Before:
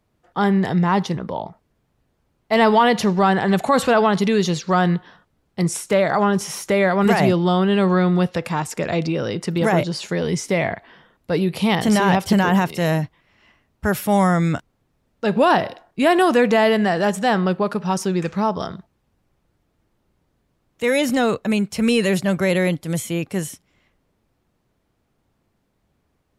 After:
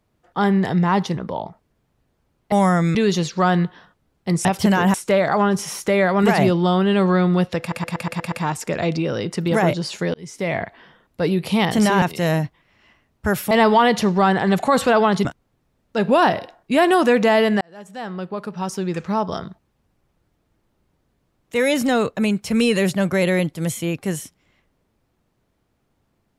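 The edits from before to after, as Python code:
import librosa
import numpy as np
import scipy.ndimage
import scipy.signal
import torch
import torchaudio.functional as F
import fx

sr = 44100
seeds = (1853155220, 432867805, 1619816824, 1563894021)

y = fx.edit(x, sr, fx.swap(start_s=2.52, length_s=1.74, other_s=14.1, other_length_s=0.43),
    fx.stutter(start_s=8.42, slice_s=0.12, count=7),
    fx.fade_in_span(start_s=10.24, length_s=0.49),
    fx.move(start_s=12.12, length_s=0.49, to_s=5.76),
    fx.fade_in_span(start_s=16.89, length_s=1.78), tone=tone)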